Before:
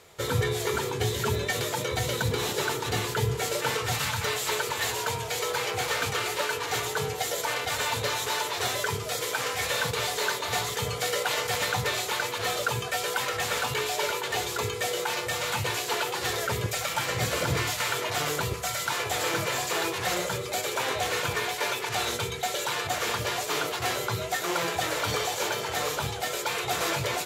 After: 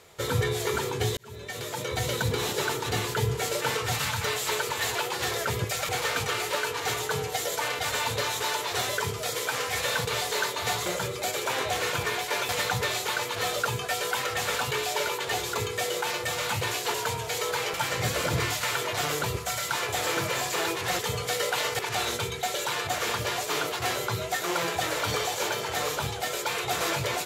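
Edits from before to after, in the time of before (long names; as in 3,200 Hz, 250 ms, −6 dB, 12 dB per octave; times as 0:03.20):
0:01.17–0:02.06: fade in
0:04.95–0:05.75: swap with 0:15.97–0:16.91
0:10.72–0:11.52: swap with 0:20.16–0:21.79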